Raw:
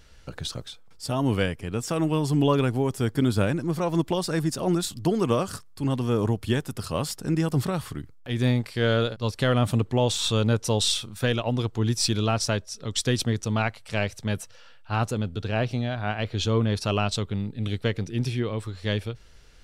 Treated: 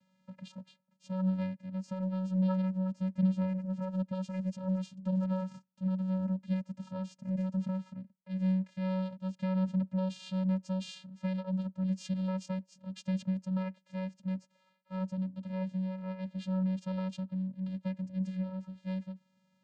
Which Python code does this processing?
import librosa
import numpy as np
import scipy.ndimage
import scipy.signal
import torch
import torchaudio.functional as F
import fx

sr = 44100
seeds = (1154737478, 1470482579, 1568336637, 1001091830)

y = fx.vocoder(x, sr, bands=8, carrier='square', carrier_hz=187.0)
y = y * 10.0 ** (-7.5 / 20.0)